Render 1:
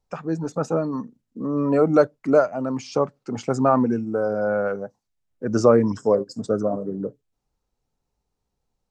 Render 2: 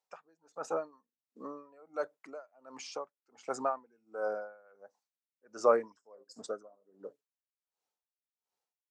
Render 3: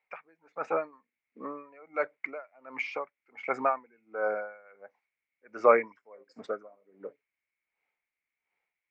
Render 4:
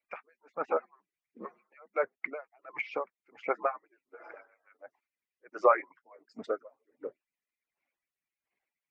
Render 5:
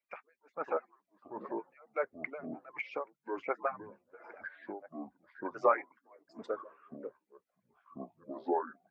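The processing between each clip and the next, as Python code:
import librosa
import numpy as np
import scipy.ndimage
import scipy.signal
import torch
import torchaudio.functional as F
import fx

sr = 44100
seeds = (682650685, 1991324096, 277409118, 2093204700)

y1 = fx.dynamic_eq(x, sr, hz=4200.0, q=0.86, threshold_db=-41.0, ratio=4.0, max_db=-4)
y1 = scipy.signal.sosfilt(scipy.signal.butter(2, 650.0, 'highpass', fs=sr, output='sos'), y1)
y1 = y1 * 10.0 ** (-30 * (0.5 - 0.5 * np.cos(2.0 * np.pi * 1.4 * np.arange(len(y1)) / sr)) / 20.0)
y1 = F.gain(torch.from_numpy(y1), -3.5).numpy()
y2 = fx.lowpass_res(y1, sr, hz=2200.0, q=12.0)
y2 = F.gain(torch.from_numpy(y2), 3.5).numpy()
y3 = fx.hpss_only(y2, sr, part='percussive')
y3 = fx.env_lowpass_down(y3, sr, base_hz=1800.0, full_db=-28.5)
y3 = fx.peak_eq(y3, sr, hz=250.0, db=5.5, octaves=1.4)
y4 = fx.echo_pitch(y3, sr, ms=498, semitones=-6, count=2, db_per_echo=-6.0)
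y4 = F.gain(torch.from_numpy(y4), -4.0).numpy()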